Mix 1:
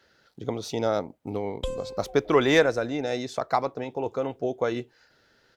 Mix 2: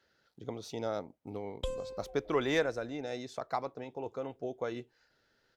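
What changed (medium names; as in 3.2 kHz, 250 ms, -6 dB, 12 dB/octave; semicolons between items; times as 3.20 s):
speech -10.0 dB; background -5.0 dB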